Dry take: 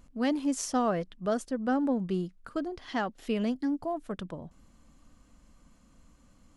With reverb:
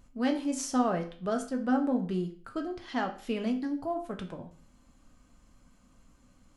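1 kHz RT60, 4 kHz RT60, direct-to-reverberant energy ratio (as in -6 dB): 0.45 s, 0.40 s, 3.0 dB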